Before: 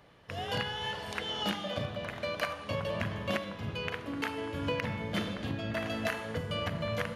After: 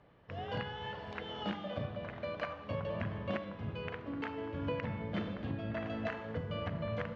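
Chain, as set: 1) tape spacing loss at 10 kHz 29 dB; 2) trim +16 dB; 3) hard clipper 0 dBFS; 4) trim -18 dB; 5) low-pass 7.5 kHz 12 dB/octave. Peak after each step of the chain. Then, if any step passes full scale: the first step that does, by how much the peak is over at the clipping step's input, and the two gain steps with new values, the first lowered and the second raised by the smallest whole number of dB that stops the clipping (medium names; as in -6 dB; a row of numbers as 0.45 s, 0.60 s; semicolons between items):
-20.5 dBFS, -4.5 dBFS, -4.5 dBFS, -22.5 dBFS, -22.5 dBFS; nothing clips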